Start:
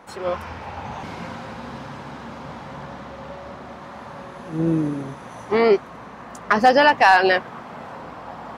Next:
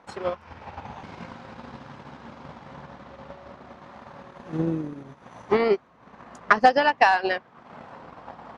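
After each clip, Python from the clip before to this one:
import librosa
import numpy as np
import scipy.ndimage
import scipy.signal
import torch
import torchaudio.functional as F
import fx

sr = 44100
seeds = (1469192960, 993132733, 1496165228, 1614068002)

y = scipy.signal.sosfilt(scipy.signal.butter(2, 6500.0, 'lowpass', fs=sr, output='sos'), x)
y = fx.transient(y, sr, attack_db=10, sustain_db=-10)
y = F.gain(torch.from_numpy(y), -8.0).numpy()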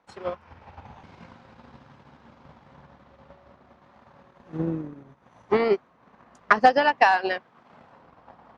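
y = fx.high_shelf(x, sr, hz=5500.0, db=-4.0)
y = fx.band_widen(y, sr, depth_pct=40)
y = F.gain(torch.from_numpy(y), -3.5).numpy()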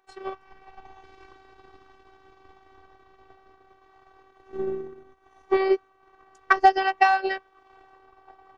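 y = fx.robotise(x, sr, hz=384.0)
y = F.gain(torch.from_numpy(y), 1.0).numpy()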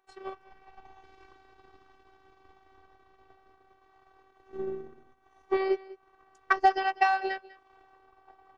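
y = x + 10.0 ** (-19.5 / 20.0) * np.pad(x, (int(197 * sr / 1000.0), 0))[:len(x)]
y = F.gain(torch.from_numpy(y), -5.5).numpy()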